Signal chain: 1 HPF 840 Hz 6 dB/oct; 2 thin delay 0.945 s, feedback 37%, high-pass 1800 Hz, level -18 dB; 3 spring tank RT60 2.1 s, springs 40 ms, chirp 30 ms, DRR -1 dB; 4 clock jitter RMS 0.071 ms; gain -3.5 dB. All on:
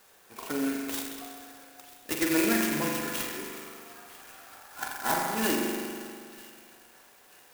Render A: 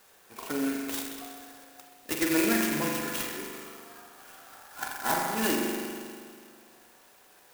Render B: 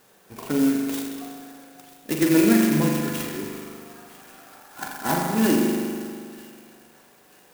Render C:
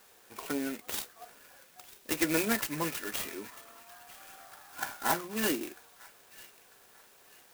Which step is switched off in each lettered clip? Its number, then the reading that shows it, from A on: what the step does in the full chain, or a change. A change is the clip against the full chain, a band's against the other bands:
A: 2, momentary loudness spread change +1 LU; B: 1, 125 Hz band +11.5 dB; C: 3, crest factor change +4.0 dB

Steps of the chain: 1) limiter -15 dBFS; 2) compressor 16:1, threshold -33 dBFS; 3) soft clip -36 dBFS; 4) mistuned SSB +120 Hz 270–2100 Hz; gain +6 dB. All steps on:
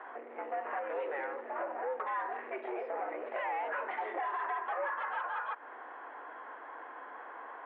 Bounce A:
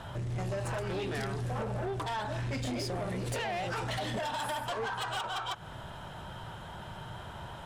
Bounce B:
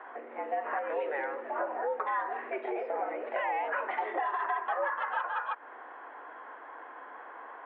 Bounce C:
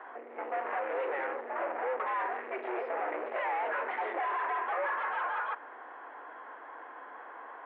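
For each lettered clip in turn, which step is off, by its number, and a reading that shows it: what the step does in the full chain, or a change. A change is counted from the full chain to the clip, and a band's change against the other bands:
4, 250 Hz band +11.5 dB; 3, distortion -12 dB; 2, mean gain reduction 7.0 dB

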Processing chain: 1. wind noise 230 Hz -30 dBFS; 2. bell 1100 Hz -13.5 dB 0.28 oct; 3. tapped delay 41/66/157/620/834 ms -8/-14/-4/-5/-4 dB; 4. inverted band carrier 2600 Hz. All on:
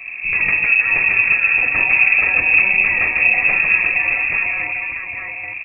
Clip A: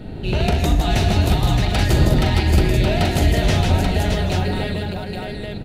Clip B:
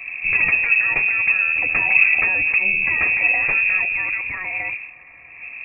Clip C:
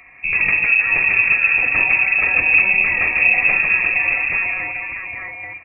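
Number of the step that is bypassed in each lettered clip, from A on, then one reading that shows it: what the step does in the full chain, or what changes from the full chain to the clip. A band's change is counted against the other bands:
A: 4, 2 kHz band -29.5 dB; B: 3, crest factor change +2.5 dB; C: 1, momentary loudness spread change +2 LU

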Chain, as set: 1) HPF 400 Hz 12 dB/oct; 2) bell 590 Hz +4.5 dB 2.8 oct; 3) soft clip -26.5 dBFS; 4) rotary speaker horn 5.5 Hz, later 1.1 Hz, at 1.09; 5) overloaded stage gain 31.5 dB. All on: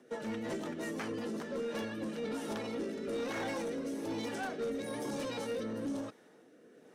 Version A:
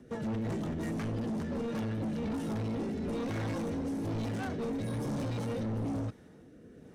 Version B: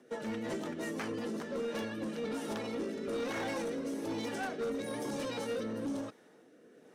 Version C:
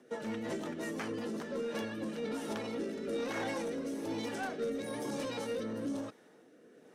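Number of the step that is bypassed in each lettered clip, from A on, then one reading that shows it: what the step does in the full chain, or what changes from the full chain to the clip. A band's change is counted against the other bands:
1, 125 Hz band +16.5 dB; 3, distortion -20 dB; 5, distortion -22 dB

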